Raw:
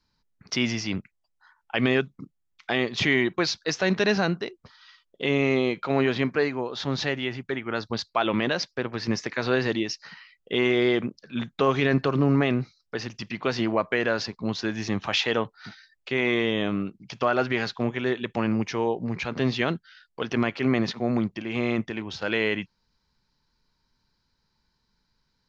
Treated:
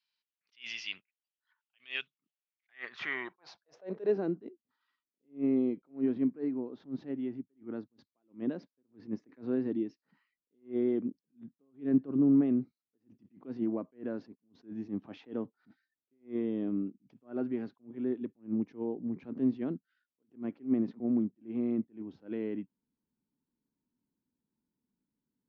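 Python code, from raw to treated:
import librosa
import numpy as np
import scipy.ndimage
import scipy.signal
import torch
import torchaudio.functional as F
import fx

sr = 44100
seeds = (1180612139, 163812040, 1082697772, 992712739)

y = fx.filter_sweep_bandpass(x, sr, from_hz=2900.0, to_hz=270.0, start_s=2.36, end_s=4.44, q=3.4)
y = fx.attack_slew(y, sr, db_per_s=250.0)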